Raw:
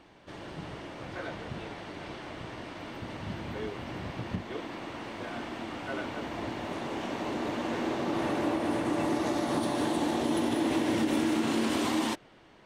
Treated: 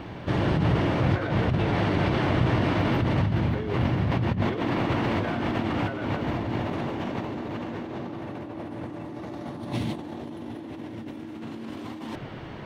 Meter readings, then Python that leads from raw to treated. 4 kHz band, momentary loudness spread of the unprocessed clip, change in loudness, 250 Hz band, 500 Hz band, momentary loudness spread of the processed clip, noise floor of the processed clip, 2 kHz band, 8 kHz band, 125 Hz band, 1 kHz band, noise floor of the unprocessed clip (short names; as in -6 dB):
+0.5 dB, 13 LU, +5.0 dB, +3.0 dB, +3.0 dB, 14 LU, -39 dBFS, +4.5 dB, under -10 dB, +15.5 dB, +3.5 dB, -56 dBFS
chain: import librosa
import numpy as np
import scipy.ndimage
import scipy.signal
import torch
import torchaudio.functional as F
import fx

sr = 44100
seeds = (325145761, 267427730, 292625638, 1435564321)

y = fx.spec_box(x, sr, start_s=9.72, length_s=0.21, low_hz=240.0, high_hz=1900.0, gain_db=-10)
y = fx.peak_eq(y, sr, hz=8500.0, db=-11.5, octaves=1.5)
y = fx.over_compress(y, sr, threshold_db=-42.0, ratio=-1.0)
y = fx.peak_eq(y, sr, hz=110.0, db=11.0, octaves=1.8)
y = y * librosa.db_to_amplitude(8.5)